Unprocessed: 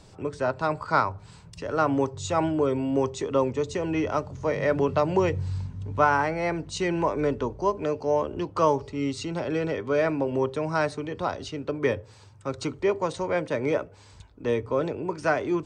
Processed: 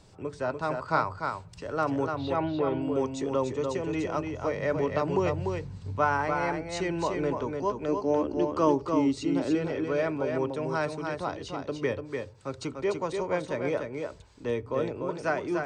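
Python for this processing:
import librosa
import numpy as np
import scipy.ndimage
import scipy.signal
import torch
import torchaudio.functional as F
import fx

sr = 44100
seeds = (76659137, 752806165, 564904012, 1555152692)

y = fx.steep_lowpass(x, sr, hz=4500.0, slope=48, at=(2.06, 2.82))
y = fx.peak_eq(y, sr, hz=300.0, db=10.5, octaves=0.64, at=(7.88, 9.55))
y = y + 10.0 ** (-5.0 / 20.0) * np.pad(y, (int(294 * sr / 1000.0), 0))[:len(y)]
y = F.gain(torch.from_numpy(y), -4.5).numpy()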